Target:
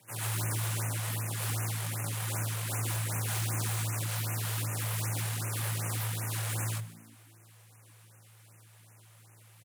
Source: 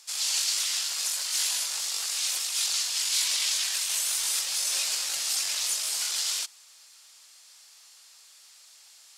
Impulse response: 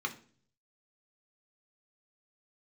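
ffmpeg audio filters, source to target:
-filter_complex "[0:a]lowpass=frequency=7400:width=0.5412,lowpass=frequency=7400:width=1.3066,aecho=1:1:4.3:0.62,flanger=delay=18:depth=2.5:speed=1.1,aeval=exprs='abs(val(0))':channel_layout=same,asetrate=41983,aresample=44100,afreqshift=110,aeval=exprs='0.0447*(abs(mod(val(0)/0.0447+3,4)-2)-1)':channel_layout=same,asplit=2[link_01][link_02];[link_02]asplit=4[link_03][link_04][link_05][link_06];[link_03]adelay=148,afreqshift=56,volume=-19dB[link_07];[link_04]adelay=296,afreqshift=112,volume=-24.7dB[link_08];[link_05]adelay=444,afreqshift=168,volume=-30.4dB[link_09];[link_06]adelay=592,afreqshift=224,volume=-36dB[link_10];[link_07][link_08][link_09][link_10]amix=inputs=4:normalize=0[link_11];[link_01][link_11]amix=inputs=2:normalize=0,afftfilt=real='re*(1-between(b*sr/1024,230*pow(4200/230,0.5+0.5*sin(2*PI*2.6*pts/sr))/1.41,230*pow(4200/230,0.5+0.5*sin(2*PI*2.6*pts/sr))*1.41))':imag='im*(1-between(b*sr/1024,230*pow(4200/230,0.5+0.5*sin(2*PI*2.6*pts/sr))/1.41,230*pow(4200/230,0.5+0.5*sin(2*PI*2.6*pts/sr))*1.41))':win_size=1024:overlap=0.75"

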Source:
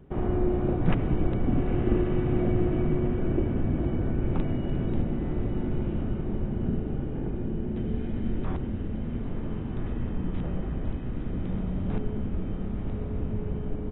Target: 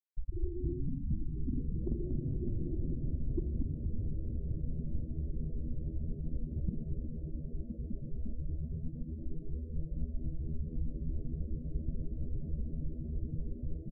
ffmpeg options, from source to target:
ffmpeg -i in.wav -filter_complex "[0:a]afftfilt=real='re*gte(hypot(re,im),0.447)':imag='im*gte(hypot(re,im),0.447)':win_size=1024:overlap=0.75,highshelf=frequency=2200:gain=4.5,bandreject=frequency=72.27:width_type=h:width=4,bandreject=frequency=144.54:width_type=h:width=4,bandreject=frequency=216.81:width_type=h:width=4,bandreject=frequency=289.08:width_type=h:width=4,bandreject=frequency=361.35:width_type=h:width=4,bandreject=frequency=433.62:width_type=h:width=4,bandreject=frequency=505.89:width_type=h:width=4,bandreject=frequency=578.16:width_type=h:width=4,bandreject=frequency=650.43:width_type=h:width=4,bandreject=frequency=722.7:width_type=h:width=4,bandreject=frequency=794.97:width_type=h:width=4,bandreject=frequency=867.24:width_type=h:width=4,bandreject=frequency=939.51:width_type=h:width=4,bandreject=frequency=1011.78:width_type=h:width=4,bandreject=frequency=1084.05:width_type=h:width=4,bandreject=frequency=1156.32:width_type=h:width=4,bandreject=frequency=1228.59:width_type=h:width=4,bandreject=frequency=1300.86:width_type=h:width=4,bandreject=frequency=1373.13:width_type=h:width=4,bandreject=frequency=1445.4:width_type=h:width=4,bandreject=frequency=1517.67:width_type=h:width=4,bandreject=frequency=1589.94:width_type=h:width=4,bandreject=frequency=1662.21:width_type=h:width=4,bandreject=frequency=1734.48:width_type=h:width=4,bandreject=frequency=1806.75:width_type=h:width=4,bandreject=frequency=1879.02:width_type=h:width=4,bandreject=frequency=1951.29:width_type=h:width=4,bandreject=frequency=2023.56:width_type=h:width=4,bandreject=frequency=2095.83:width_type=h:width=4,bandreject=frequency=2168.1:width_type=h:width=4,acompressor=threshold=-37dB:ratio=16,asplit=2[link_01][link_02];[link_02]asplit=8[link_03][link_04][link_05][link_06][link_07][link_08][link_09][link_10];[link_03]adelay=233,afreqshift=-83,volume=-4dB[link_11];[link_04]adelay=466,afreqshift=-166,volume=-8.9dB[link_12];[link_05]adelay=699,afreqshift=-249,volume=-13.8dB[link_13];[link_06]adelay=932,afreqshift=-332,volume=-18.6dB[link_14];[link_07]adelay=1165,afreqshift=-415,volume=-23.5dB[link_15];[link_08]adelay=1398,afreqshift=-498,volume=-28.4dB[link_16];[link_09]adelay=1631,afreqshift=-581,volume=-33.3dB[link_17];[link_10]adelay=1864,afreqshift=-664,volume=-38.2dB[link_18];[link_11][link_12][link_13][link_14][link_15][link_16][link_17][link_18]amix=inputs=8:normalize=0[link_19];[link_01][link_19]amix=inputs=2:normalize=0,volume=5.5dB" out.wav

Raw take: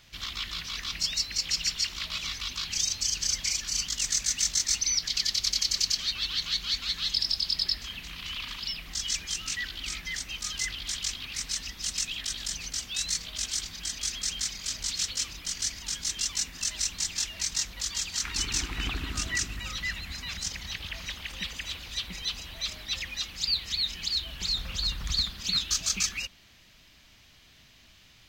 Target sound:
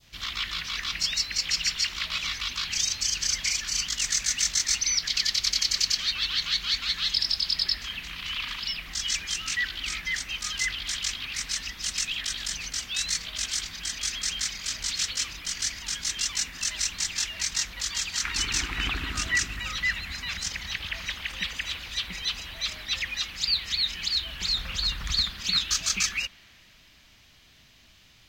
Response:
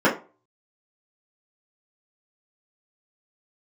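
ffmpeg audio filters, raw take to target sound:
-af "adynamicequalizer=threshold=0.00562:dfrequency=1800:dqfactor=0.73:tfrequency=1800:tqfactor=0.73:attack=5:release=100:ratio=0.375:range=3.5:mode=boostabove:tftype=bell"

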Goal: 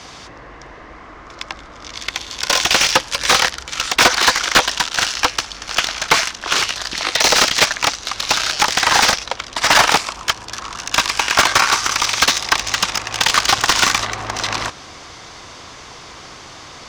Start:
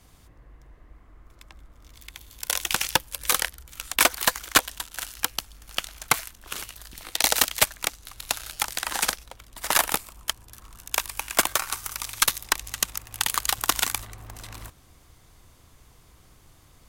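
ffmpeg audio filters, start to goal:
ffmpeg -i in.wav -filter_complex "[0:a]lowpass=frequency=5700:width_type=q:width=2.3,asplit=2[link_01][link_02];[link_02]highpass=frequency=720:poles=1,volume=31dB,asoftclip=type=tanh:threshold=0dB[link_03];[link_01][link_03]amix=inputs=2:normalize=0,lowpass=frequency=2200:poles=1,volume=-6dB,volume=1.5dB" out.wav

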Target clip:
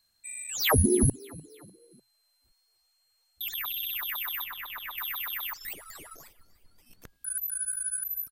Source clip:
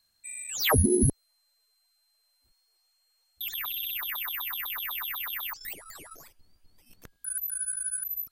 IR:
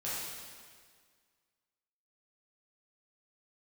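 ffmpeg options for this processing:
-filter_complex "[0:a]asplit=4[link_01][link_02][link_03][link_04];[link_02]adelay=299,afreqshift=36,volume=-23dB[link_05];[link_03]adelay=598,afreqshift=72,volume=-29dB[link_06];[link_04]adelay=897,afreqshift=108,volume=-35dB[link_07];[link_01][link_05][link_06][link_07]amix=inputs=4:normalize=0,asettb=1/sr,asplit=3[link_08][link_09][link_10];[link_08]atrim=end=4.444[link_11];[link_09]atrim=start=4.44:end=4.98,asetpts=PTS-STARTPTS,afade=type=in:duration=0.004:curve=qsin,afade=type=out:start_time=0.536:duration=0.004:curve=qsin,acrossover=split=3100[link_12][link_13];[link_13]acompressor=threshold=-42dB:ratio=4:attack=1:release=60[link_14];[link_12][link_14]amix=inputs=2:normalize=0[link_15];[link_10]atrim=start=4.976[link_16];[link_11][link_15]acrossfade=duration=0.004:curve1=hsin:curve2=qsin[link_17];[link_17][link_16]acrossfade=duration=0.004:curve1=qsin:curve2=hsin"

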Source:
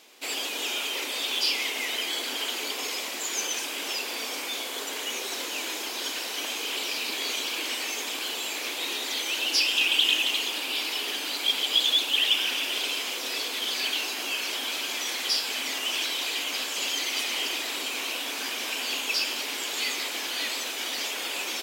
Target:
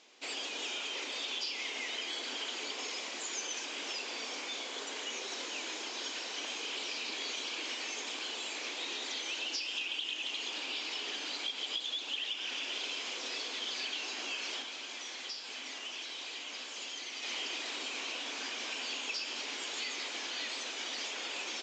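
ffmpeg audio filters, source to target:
ffmpeg -i in.wav -filter_complex "[0:a]acompressor=threshold=-27dB:ratio=12,asettb=1/sr,asplit=3[link_01][link_02][link_03];[link_01]atrim=end=14.624[link_04];[link_02]atrim=start=14.62:end=17.23,asetpts=PTS-STARTPTS,afade=type=in:duration=0.004:curve=qsin,afade=type=out:start_time=2.606:duration=0.004:curve=qsin,flanger=delay=8.7:depth=8:regen=-81:speed=1.7:shape=triangular[link_05];[link_03]atrim=start=17.226[link_06];[link_04][link_05]acrossfade=duration=0.004:curve1=hsin:curve2=qsin[link_07];[link_07][link_06]acrossfade=duration=0.004:curve1=qsin:curve2=hsin,volume=-6.5dB" -ar 16000 -c:a libvorbis -b:a 96k out.ogg

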